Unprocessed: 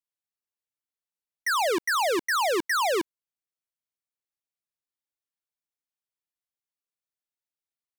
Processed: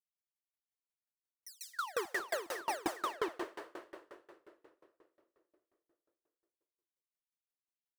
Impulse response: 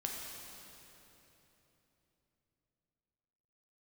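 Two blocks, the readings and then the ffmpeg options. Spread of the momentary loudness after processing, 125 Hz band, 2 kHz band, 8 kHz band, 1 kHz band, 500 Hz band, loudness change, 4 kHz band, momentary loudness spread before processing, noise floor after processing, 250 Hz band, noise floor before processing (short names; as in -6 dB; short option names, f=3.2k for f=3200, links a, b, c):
18 LU, n/a, -14.0 dB, -13.5 dB, -13.0 dB, -12.5 dB, -14.0 dB, -15.5 dB, 5 LU, under -85 dBFS, -11.5 dB, under -85 dBFS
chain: -filter_complex "[0:a]asoftclip=type=tanh:threshold=-26.5dB,acrossover=split=4100[a][b];[a]adelay=270[c];[c][b]amix=inputs=2:normalize=0,flanger=delay=0.2:depth=4.2:regen=-53:speed=0.39:shape=sinusoidal,asplit=2[d][e];[1:a]atrim=start_sample=2205,adelay=147[f];[e][f]afir=irnorm=-1:irlink=0,volume=-4.5dB[g];[d][g]amix=inputs=2:normalize=0,aeval=exprs='val(0)*pow(10,-29*if(lt(mod(5.6*n/s,1),2*abs(5.6)/1000),1-mod(5.6*n/s,1)/(2*abs(5.6)/1000),(mod(5.6*n/s,1)-2*abs(5.6)/1000)/(1-2*abs(5.6)/1000))/20)':c=same,volume=1dB"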